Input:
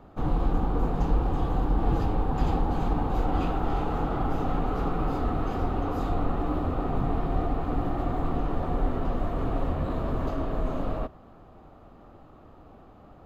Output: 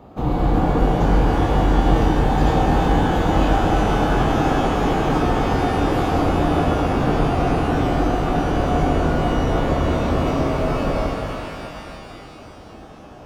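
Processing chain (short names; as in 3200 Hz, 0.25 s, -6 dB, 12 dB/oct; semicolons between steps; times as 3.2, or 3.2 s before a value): HPF 75 Hz 6 dB/oct; bell 1500 Hz -6.5 dB 0.65 oct; shimmer reverb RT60 3 s, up +12 st, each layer -8 dB, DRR -1 dB; gain +7.5 dB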